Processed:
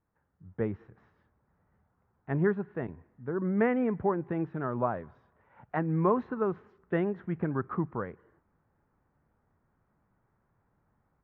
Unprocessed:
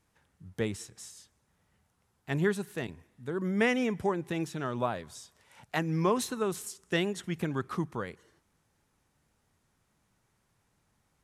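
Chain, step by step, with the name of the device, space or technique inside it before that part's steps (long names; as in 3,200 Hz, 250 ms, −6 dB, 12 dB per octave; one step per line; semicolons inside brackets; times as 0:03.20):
action camera in a waterproof case (low-pass filter 1,600 Hz 24 dB per octave; automatic gain control gain up to 8 dB; level −6.5 dB; AAC 64 kbit/s 16,000 Hz)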